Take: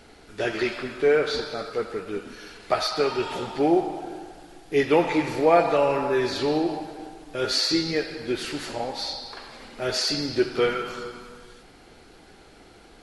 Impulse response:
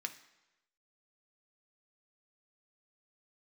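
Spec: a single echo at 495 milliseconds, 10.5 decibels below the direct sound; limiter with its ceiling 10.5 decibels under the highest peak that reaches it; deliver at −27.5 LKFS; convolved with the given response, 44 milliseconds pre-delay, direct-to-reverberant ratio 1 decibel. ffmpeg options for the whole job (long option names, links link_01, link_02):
-filter_complex "[0:a]alimiter=limit=-16.5dB:level=0:latency=1,aecho=1:1:495:0.299,asplit=2[link_01][link_02];[1:a]atrim=start_sample=2205,adelay=44[link_03];[link_02][link_03]afir=irnorm=-1:irlink=0,volume=-0.5dB[link_04];[link_01][link_04]amix=inputs=2:normalize=0,volume=-1.5dB"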